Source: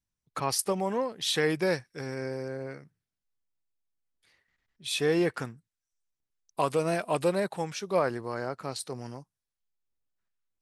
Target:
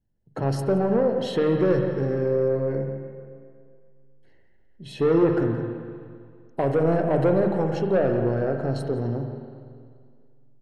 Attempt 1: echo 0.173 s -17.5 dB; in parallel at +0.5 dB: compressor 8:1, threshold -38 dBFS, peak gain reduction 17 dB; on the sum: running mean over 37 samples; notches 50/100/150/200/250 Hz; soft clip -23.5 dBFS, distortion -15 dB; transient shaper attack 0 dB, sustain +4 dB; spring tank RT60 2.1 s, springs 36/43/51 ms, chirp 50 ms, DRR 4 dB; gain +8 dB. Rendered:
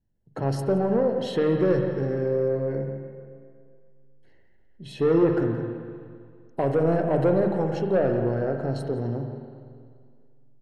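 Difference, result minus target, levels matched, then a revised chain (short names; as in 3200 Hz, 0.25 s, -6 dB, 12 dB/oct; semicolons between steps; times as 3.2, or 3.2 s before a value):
compressor: peak gain reduction +6 dB
echo 0.173 s -17.5 dB; in parallel at +0.5 dB: compressor 8:1, threshold -31 dBFS, peak gain reduction 11 dB; on the sum: running mean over 37 samples; notches 50/100/150/200/250 Hz; soft clip -23.5 dBFS, distortion -14 dB; transient shaper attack 0 dB, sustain +4 dB; spring tank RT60 2.1 s, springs 36/43/51 ms, chirp 50 ms, DRR 4 dB; gain +8 dB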